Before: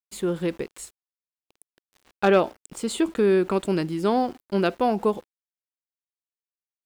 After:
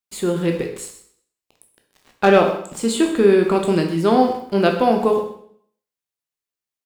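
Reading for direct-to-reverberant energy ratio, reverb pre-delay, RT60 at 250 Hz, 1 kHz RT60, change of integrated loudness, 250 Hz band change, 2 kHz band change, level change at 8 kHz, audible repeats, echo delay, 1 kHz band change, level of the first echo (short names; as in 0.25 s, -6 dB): 2.5 dB, 6 ms, 0.65 s, 0.60 s, +6.0 dB, +6.0 dB, +6.0 dB, +6.5 dB, 1, 0.128 s, +6.5 dB, -14.0 dB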